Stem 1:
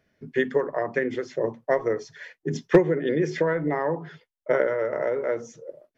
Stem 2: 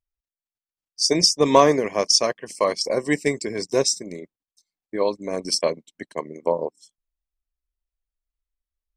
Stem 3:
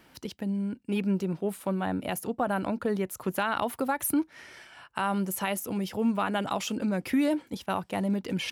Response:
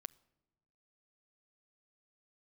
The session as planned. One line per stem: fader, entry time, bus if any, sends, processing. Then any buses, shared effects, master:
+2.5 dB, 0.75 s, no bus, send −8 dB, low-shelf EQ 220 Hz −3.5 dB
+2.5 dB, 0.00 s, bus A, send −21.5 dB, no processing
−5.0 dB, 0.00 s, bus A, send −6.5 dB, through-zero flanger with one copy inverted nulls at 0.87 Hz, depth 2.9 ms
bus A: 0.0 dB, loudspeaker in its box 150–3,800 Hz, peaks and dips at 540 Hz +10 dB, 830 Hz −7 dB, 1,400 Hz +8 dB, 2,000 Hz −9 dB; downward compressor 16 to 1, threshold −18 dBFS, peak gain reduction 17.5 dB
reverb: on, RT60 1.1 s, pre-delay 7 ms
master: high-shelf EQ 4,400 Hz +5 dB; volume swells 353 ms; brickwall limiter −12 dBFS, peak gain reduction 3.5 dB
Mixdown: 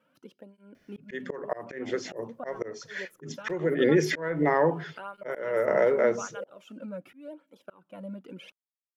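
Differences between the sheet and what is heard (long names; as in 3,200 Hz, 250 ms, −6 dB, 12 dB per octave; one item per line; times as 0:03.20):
stem 2: muted
stem 3 −5.0 dB → −11.5 dB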